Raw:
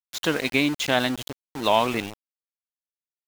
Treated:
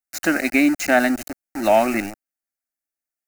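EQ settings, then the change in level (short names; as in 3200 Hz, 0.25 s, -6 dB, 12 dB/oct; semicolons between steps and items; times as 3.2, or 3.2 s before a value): fixed phaser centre 680 Hz, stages 8; +7.5 dB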